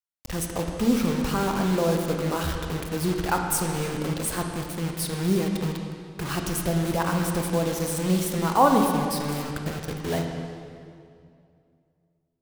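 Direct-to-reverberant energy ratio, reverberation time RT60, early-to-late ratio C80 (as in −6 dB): 2.5 dB, 2.4 s, 4.5 dB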